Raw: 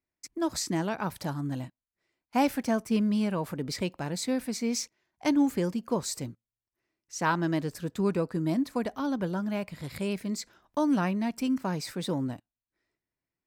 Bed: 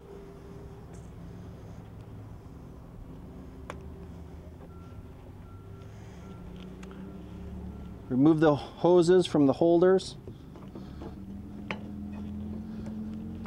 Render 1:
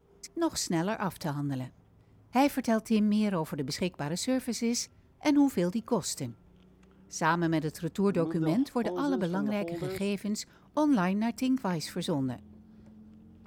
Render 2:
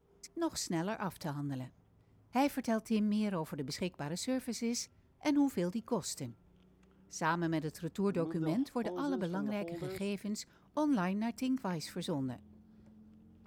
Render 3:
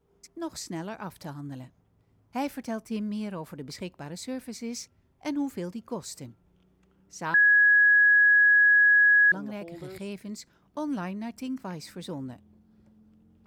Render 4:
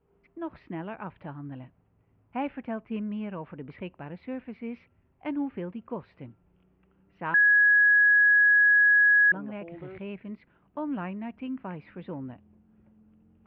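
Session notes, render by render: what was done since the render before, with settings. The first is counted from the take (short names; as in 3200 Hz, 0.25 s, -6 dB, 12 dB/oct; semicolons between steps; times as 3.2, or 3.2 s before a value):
add bed -15 dB
gain -6 dB
7.34–9.32 bleep 1670 Hz -15.5 dBFS
elliptic low-pass 2800 Hz, stop band 60 dB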